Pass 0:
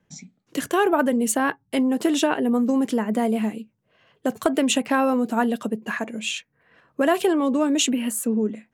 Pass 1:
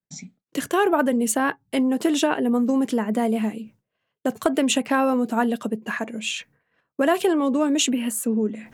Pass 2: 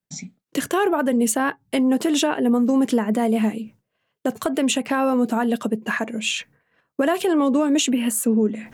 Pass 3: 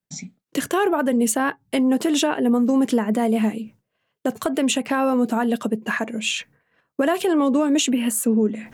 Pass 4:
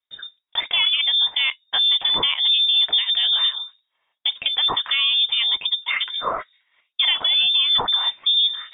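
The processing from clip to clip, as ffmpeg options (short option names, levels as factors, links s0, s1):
-af "areverse,acompressor=mode=upward:threshold=0.0251:ratio=2.5,areverse,agate=range=0.0224:threshold=0.00501:ratio=3:detection=peak"
-af "alimiter=limit=0.188:level=0:latency=1:release=153,volume=1.58"
-af anull
-af "crystalizer=i=2:c=0,lowpass=f=3200:t=q:w=0.5098,lowpass=f=3200:t=q:w=0.6013,lowpass=f=3200:t=q:w=0.9,lowpass=f=3200:t=q:w=2.563,afreqshift=-3800"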